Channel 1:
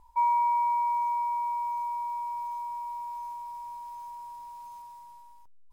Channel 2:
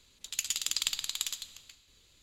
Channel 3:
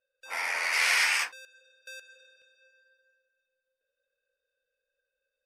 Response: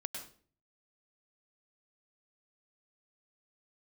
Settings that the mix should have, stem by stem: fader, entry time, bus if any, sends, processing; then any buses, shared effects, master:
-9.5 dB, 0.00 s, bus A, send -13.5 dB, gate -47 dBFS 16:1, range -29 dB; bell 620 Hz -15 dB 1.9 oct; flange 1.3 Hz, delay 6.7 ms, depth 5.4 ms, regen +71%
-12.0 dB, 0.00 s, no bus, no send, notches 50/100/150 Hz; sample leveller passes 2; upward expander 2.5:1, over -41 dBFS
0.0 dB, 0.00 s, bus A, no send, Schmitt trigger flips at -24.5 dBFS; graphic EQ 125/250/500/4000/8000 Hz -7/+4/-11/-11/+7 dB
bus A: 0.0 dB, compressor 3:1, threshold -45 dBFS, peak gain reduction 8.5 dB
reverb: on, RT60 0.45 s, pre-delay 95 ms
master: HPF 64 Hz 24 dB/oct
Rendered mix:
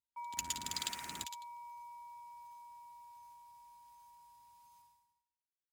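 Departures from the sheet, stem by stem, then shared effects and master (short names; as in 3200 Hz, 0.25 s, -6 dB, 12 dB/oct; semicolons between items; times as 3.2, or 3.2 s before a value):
stem 1: missing flange 1.3 Hz, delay 6.7 ms, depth 5.4 ms, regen +71%; stem 3 0.0 dB -> -10.0 dB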